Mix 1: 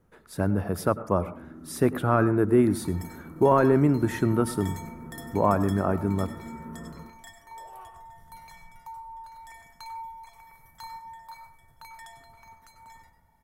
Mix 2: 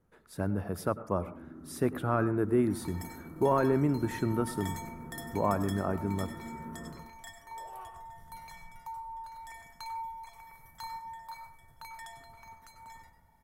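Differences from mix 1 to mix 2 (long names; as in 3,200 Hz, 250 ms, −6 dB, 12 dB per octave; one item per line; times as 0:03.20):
speech −6.5 dB
first sound: send −7.0 dB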